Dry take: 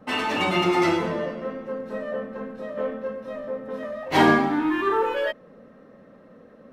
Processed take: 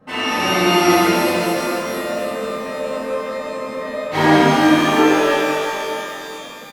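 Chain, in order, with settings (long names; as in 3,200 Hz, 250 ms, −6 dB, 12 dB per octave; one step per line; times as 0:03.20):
double-tracking delay 45 ms −7 dB
reverb with rising layers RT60 3.2 s, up +12 semitones, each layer −8 dB, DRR −9 dB
level −3.5 dB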